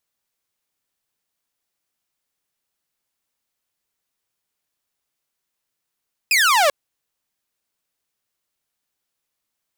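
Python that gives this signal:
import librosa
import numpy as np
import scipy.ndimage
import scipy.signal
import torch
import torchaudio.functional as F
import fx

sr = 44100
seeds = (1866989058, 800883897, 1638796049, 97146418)

y = fx.laser_zap(sr, level_db=-10.5, start_hz=2600.0, end_hz=540.0, length_s=0.39, wave='saw')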